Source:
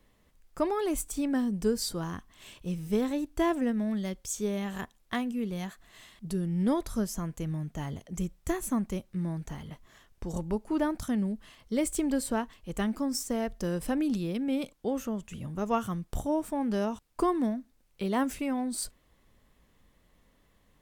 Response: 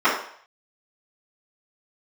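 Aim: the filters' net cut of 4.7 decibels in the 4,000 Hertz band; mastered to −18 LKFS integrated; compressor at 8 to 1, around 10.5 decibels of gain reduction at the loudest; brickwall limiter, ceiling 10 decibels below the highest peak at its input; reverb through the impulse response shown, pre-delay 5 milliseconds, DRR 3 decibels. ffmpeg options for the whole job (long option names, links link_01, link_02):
-filter_complex "[0:a]equalizer=frequency=4000:width_type=o:gain=-6.5,acompressor=threshold=-33dB:ratio=8,alimiter=level_in=6.5dB:limit=-24dB:level=0:latency=1,volume=-6.5dB,asplit=2[link_01][link_02];[1:a]atrim=start_sample=2205,adelay=5[link_03];[link_02][link_03]afir=irnorm=-1:irlink=0,volume=-24.5dB[link_04];[link_01][link_04]amix=inputs=2:normalize=0,volume=21dB"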